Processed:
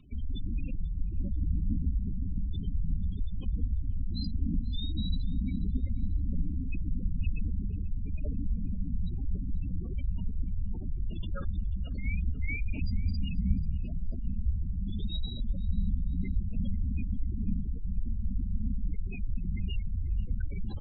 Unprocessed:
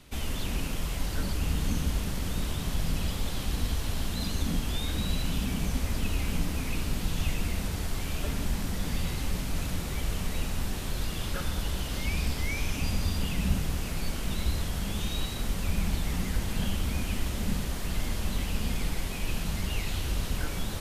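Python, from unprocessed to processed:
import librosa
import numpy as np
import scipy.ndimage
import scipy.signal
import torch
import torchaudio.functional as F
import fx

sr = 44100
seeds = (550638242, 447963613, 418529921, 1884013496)

y = fx.spec_gate(x, sr, threshold_db=-15, keep='strong')
y = fx.dynamic_eq(y, sr, hz=140.0, q=3.5, threshold_db=-47.0, ratio=4.0, max_db=-5)
y = fx.echo_feedback(y, sr, ms=488, feedback_pct=33, wet_db=-21.5)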